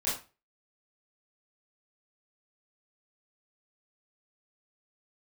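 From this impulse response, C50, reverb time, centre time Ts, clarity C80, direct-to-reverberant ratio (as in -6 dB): 5.0 dB, 0.30 s, 40 ms, 11.0 dB, -10.5 dB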